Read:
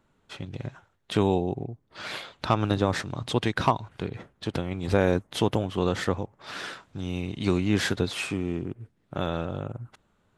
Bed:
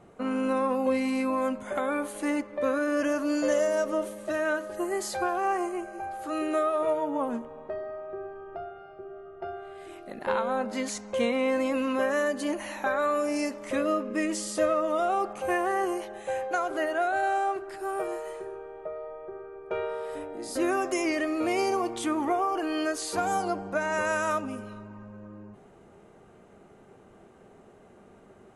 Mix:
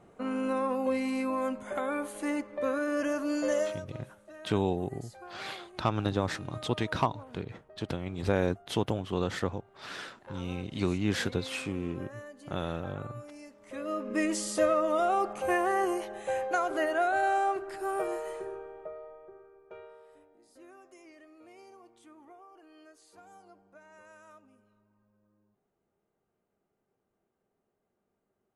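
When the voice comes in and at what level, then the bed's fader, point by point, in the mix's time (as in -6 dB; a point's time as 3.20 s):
3.35 s, -5.0 dB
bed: 3.62 s -3.5 dB
3.86 s -19.5 dB
13.51 s -19.5 dB
14.15 s -0.5 dB
18.52 s -0.5 dB
20.55 s -27 dB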